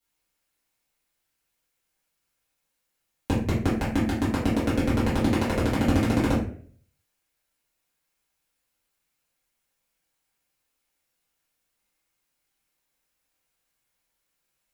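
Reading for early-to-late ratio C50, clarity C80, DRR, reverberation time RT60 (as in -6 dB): 4.5 dB, 8.5 dB, -11.0 dB, 0.50 s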